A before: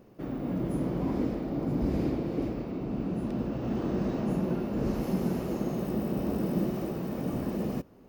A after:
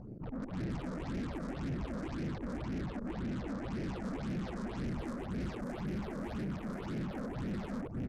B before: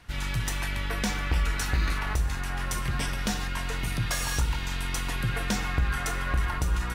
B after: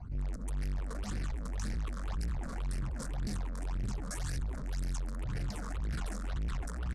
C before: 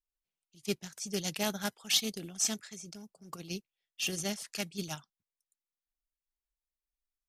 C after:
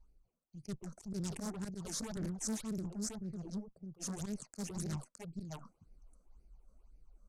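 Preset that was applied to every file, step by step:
local Wiener filter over 25 samples; slow attack 145 ms; on a send: delay 614 ms -6 dB; on the sum: peak limiter -23.5 dBFS; peaking EQ 2.9 kHz -10.5 dB 1.3 oct; valve stage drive 48 dB, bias 0.55; reverse; upward compressor, threshold -54 dBFS; reverse; phase shifter stages 8, 1.9 Hz, lowest notch 100–1100 Hz; low-pass 9.8 kHz 24 dB/octave; tone controls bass +4 dB, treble +5 dB; loudspeaker Doppler distortion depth 0.27 ms; trim +11 dB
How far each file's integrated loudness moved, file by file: -8.0 LU, -9.0 LU, -7.5 LU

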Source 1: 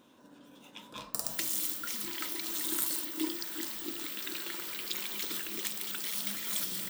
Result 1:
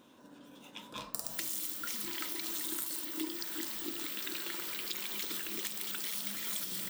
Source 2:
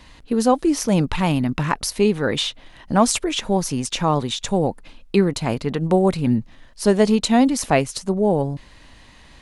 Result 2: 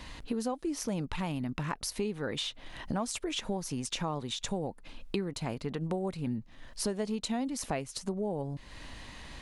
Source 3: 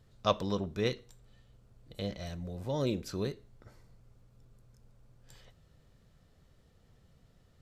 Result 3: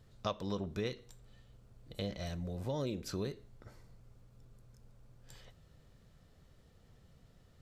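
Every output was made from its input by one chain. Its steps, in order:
compression 4:1, threshold -35 dBFS; trim +1 dB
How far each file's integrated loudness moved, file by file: -2.5 LU, -15.0 LU, -5.0 LU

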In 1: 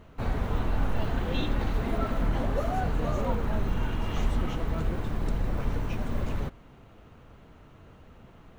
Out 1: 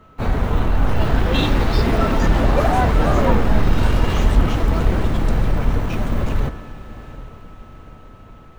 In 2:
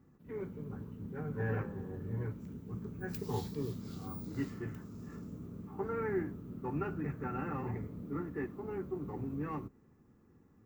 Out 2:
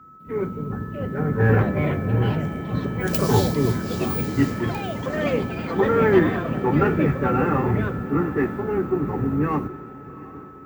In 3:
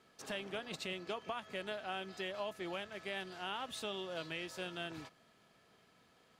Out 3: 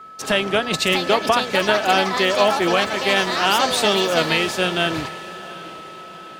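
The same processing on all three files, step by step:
whistle 1.3 kHz -53 dBFS; ever faster or slower copies 721 ms, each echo +5 st, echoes 3, each echo -6 dB; in parallel at -8.5 dB: hard clipper -28.5 dBFS; on the sum: echo that smears into a reverb 770 ms, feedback 63%, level -14 dB; three bands expanded up and down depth 40%; peak normalisation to -3 dBFS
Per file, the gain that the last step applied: +8.5 dB, +13.5 dB, +20.0 dB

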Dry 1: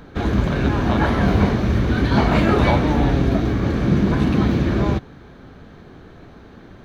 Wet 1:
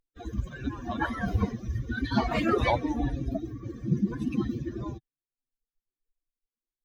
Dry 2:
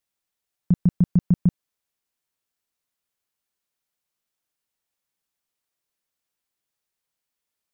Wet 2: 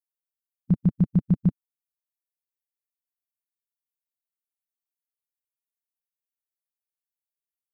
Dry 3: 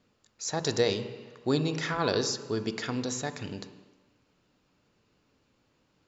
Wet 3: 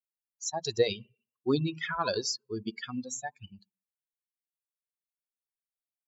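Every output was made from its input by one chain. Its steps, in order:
expander on every frequency bin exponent 3; bass shelf 130 Hz -4.5 dB; peak normalisation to -12 dBFS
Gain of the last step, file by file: -1.0 dB, +2.0 dB, +4.0 dB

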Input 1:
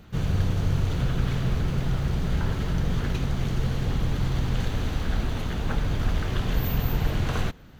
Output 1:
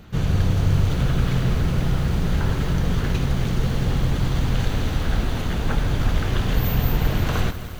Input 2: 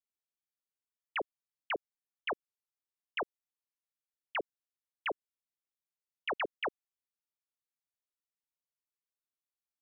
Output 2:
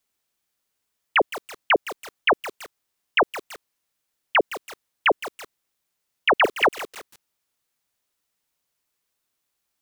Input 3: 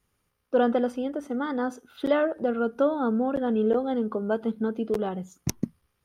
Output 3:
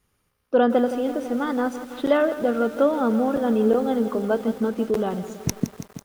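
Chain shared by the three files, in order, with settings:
bit-crushed delay 165 ms, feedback 80%, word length 7-bit, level -13 dB; normalise loudness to -23 LUFS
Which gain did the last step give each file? +4.5 dB, +16.5 dB, +3.5 dB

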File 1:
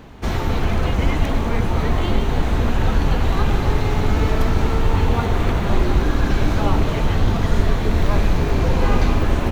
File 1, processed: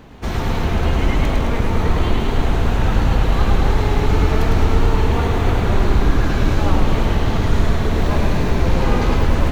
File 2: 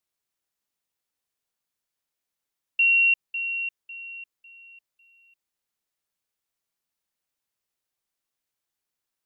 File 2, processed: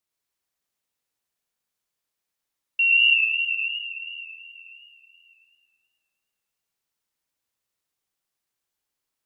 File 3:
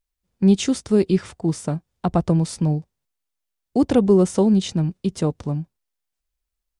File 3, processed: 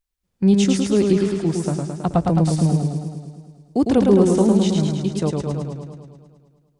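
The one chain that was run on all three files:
modulated delay 107 ms, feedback 66%, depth 77 cents, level -3.5 dB; normalise loudness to -19 LUFS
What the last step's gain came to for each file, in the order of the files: -1.0 dB, -0.5 dB, -0.5 dB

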